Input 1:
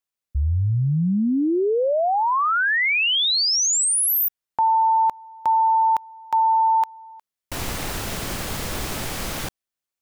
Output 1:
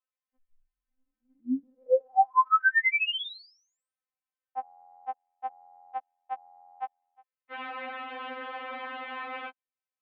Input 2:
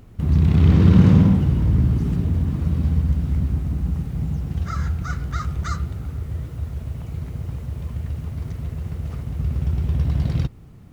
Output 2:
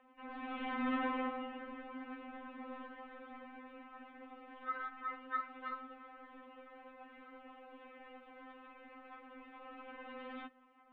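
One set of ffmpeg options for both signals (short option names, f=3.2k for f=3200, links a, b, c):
-filter_complex "[0:a]acrossover=split=560 2700:gain=0.158 1 0.0708[a][b][c];[a][b][c]amix=inputs=3:normalize=0,highpass=f=210:t=q:w=0.5412,highpass=f=210:t=q:w=1.307,lowpass=f=3.5k:t=q:w=0.5176,lowpass=f=3.5k:t=q:w=0.7071,lowpass=f=3.5k:t=q:w=1.932,afreqshift=-79,afftfilt=real='re*3.46*eq(mod(b,12),0)':imag='im*3.46*eq(mod(b,12),0)':win_size=2048:overlap=0.75"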